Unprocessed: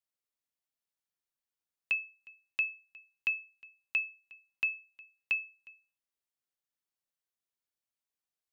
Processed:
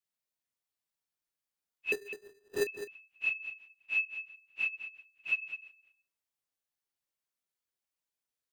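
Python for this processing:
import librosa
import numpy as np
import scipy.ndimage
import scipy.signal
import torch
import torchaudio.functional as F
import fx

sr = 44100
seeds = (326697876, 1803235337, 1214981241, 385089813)

p1 = fx.phase_scramble(x, sr, seeds[0], window_ms=100)
p2 = fx.sample_hold(p1, sr, seeds[1], rate_hz=2200.0, jitter_pct=0, at=(1.92, 2.67))
y = p2 + fx.echo_single(p2, sr, ms=206, db=-11.0, dry=0)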